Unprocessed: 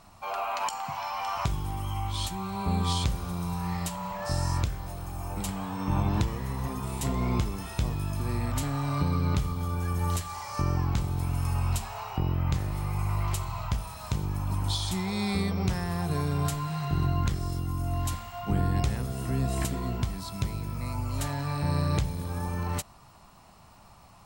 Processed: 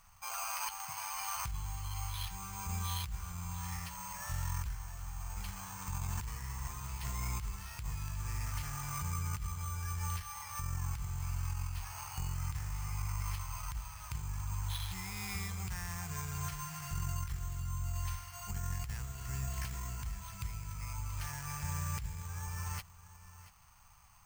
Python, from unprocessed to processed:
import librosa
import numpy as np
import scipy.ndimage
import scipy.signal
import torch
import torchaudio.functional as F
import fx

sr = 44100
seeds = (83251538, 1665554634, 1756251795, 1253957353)

y = scipy.signal.medfilt(x, 9)
y = np.repeat(scipy.signal.resample_poly(y, 1, 6), 6)[:len(y)]
y = fx.tone_stack(y, sr, knobs='10-0-10')
y = y + 10.0 ** (-16.0 / 20.0) * np.pad(y, (int(683 * sr / 1000.0), 0))[:len(y)]
y = fx.over_compress(y, sr, threshold_db=-37.0, ratio=-0.5)
y = fx.peak_eq(y, sr, hz=600.0, db=-10.0, octaves=0.56)
y = y * 10.0 ** (1.5 / 20.0)